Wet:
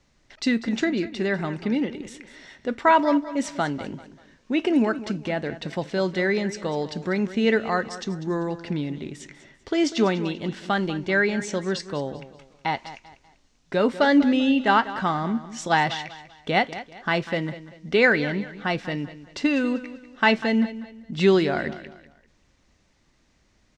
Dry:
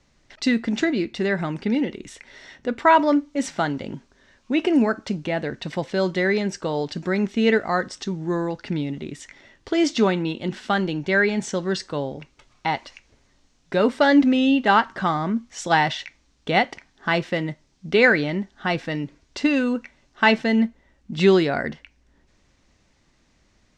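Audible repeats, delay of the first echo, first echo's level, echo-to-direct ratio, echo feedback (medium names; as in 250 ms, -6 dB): 3, 195 ms, -14.5 dB, -14.0 dB, 35%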